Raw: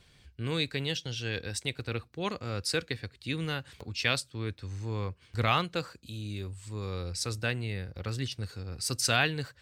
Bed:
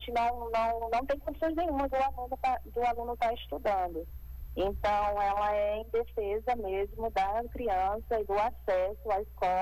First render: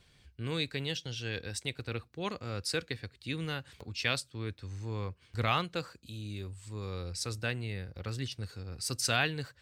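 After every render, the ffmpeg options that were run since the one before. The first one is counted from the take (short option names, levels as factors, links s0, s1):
-af "volume=0.708"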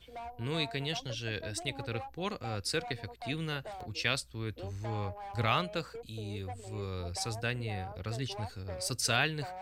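-filter_complex "[1:a]volume=0.178[s0];[0:a][s0]amix=inputs=2:normalize=0"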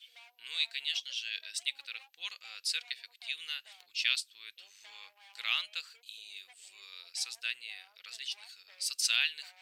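-af "highpass=f=2900:t=q:w=1.8"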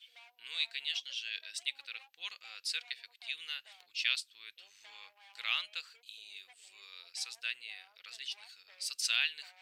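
-af "highshelf=f=4300:g=-6"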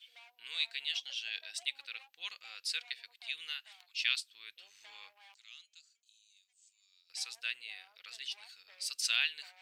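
-filter_complex "[0:a]asettb=1/sr,asplit=3[s0][s1][s2];[s0]atrim=end=1.034[s3];[s1]atrim=start=1.03:end=1.65,asetpts=PTS-STARTPTS,afade=t=in:d=0.004:c=qsin,afade=t=out:st=0.616:d=0.004:c=qsin,equalizer=f=760:t=o:w=0.39:g=13[s4];[s2]atrim=start=1.646[s5];[s3][s4]acrossfade=d=0.004:c1=hsin:c2=qsin[s6];[s6][s5]acrossfade=d=0.004:c1=qsin:c2=hsin,asplit=3[s7][s8][s9];[s7]afade=t=out:st=3.53:d=0.02[s10];[s8]highpass=f=730:w=0.5412,highpass=f=730:w=1.3066,afade=t=in:st=3.53:d=0.02,afade=t=out:st=4.32:d=0.02[s11];[s9]afade=t=in:st=4.32:d=0.02[s12];[s10][s11][s12]amix=inputs=3:normalize=0,asettb=1/sr,asplit=3[s13][s14][s15];[s13]atrim=end=5.344[s16];[s14]atrim=start=5.34:end=7.1,asetpts=PTS-STARTPTS,afade=t=in:d=0.004:c=qsin,afade=t=out:st=1.756:d=0.004:c=qsin,bandpass=f=6700:t=q:w=5.2[s17];[s15]atrim=start=7.096[s18];[s16][s17]acrossfade=d=0.004:c1=hsin:c2=qsin[s19];[s19][s18]acrossfade=d=0.004:c1=qsin:c2=hsin"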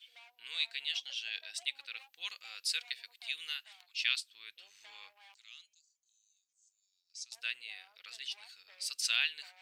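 -filter_complex "[0:a]asettb=1/sr,asplit=3[s0][s1][s2];[s0]atrim=end=1.974[s3];[s1]atrim=start=1.97:end=3.64,asetpts=PTS-STARTPTS,afade=t=in:d=0.004:c=qsin,afade=t=out:st=1.666:d=0.004:c=qsin,highshelf=f=6400:g=7[s4];[s2]atrim=start=3.636[s5];[s3][s4]acrossfade=d=0.004:c1=hsin:c2=qsin[s6];[s6][s5]acrossfade=d=0.004:c1=qsin:c2=hsin,asettb=1/sr,asplit=3[s7][s8][s9];[s7]atrim=end=5.734[s10];[s8]atrim=start=5.73:end=7.32,asetpts=PTS-STARTPTS,afade=t=in:d=0.004:c=qsin,afade=t=out:st=1.586:d=0.004:c=qsin,bandpass=f=6300:t=q:w=4.1[s11];[s9]atrim=start=7.316[s12];[s10][s11]acrossfade=d=0.004:c1=hsin:c2=qsin[s13];[s13][s12]acrossfade=d=0.004:c1=qsin:c2=hsin"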